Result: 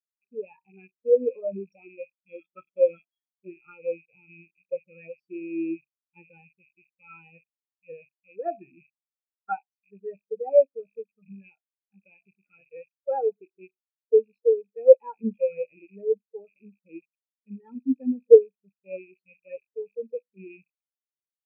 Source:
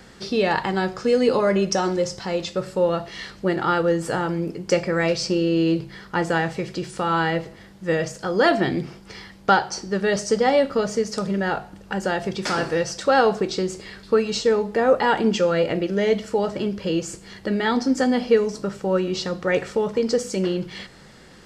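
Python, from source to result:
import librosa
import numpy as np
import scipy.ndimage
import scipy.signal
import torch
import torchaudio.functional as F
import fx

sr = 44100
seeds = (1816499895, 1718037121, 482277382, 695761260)

y = fx.rattle_buzz(x, sr, strikes_db=-37.0, level_db=-8.0)
y = fx.small_body(y, sr, hz=(280.0, 1300.0, 3300.0), ring_ms=45, db=13, at=(2.27, 3.3), fade=0.02)
y = fx.spectral_expand(y, sr, expansion=4.0)
y = F.gain(torch.from_numpy(y), 1.5).numpy()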